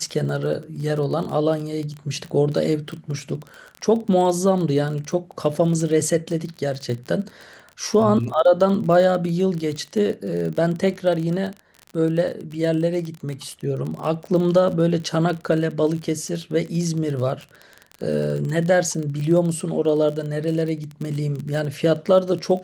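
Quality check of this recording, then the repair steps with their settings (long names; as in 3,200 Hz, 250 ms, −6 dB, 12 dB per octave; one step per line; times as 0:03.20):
surface crackle 29 per second −27 dBFS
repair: click removal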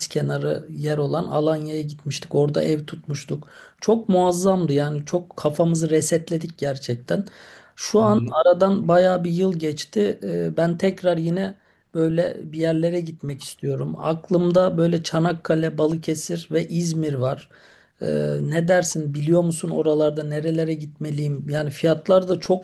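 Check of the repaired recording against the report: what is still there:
none of them is left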